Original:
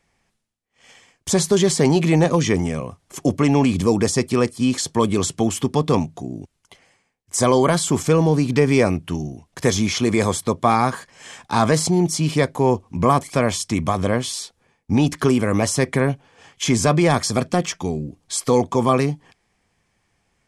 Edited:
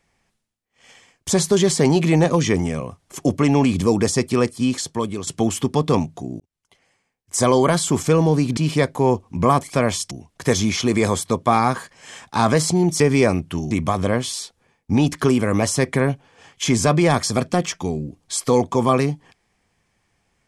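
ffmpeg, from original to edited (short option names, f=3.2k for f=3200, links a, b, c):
-filter_complex "[0:a]asplit=7[a][b][c][d][e][f][g];[a]atrim=end=5.27,asetpts=PTS-STARTPTS,afade=t=out:st=4.56:d=0.71:silence=0.281838[h];[b]atrim=start=5.27:end=6.4,asetpts=PTS-STARTPTS,afade=t=in:d=0.004:c=hsin:silence=0.281838,afade=t=out:st=1.126:d=0.004:c=hsin[i];[c]atrim=start=6.4:end=8.572,asetpts=PTS-STARTPTS,afade=t=in:d=0.96[j];[d]atrim=start=12.168:end=13.712[k];[e]atrim=start=9.278:end=12.172[l];[f]atrim=start=8.568:end=9.282[m];[g]atrim=start=13.708[n];[h][i][j]concat=n=3:v=0:a=1[o];[o][k]acrossfade=d=0.004:c1=hsin:c2=hsin[p];[p][l]acrossfade=d=0.004:c1=hsin:c2=hsin[q];[q][m]acrossfade=d=0.004:c1=hsin:c2=hsin[r];[r][n]acrossfade=d=0.004:c1=hsin:c2=hsin"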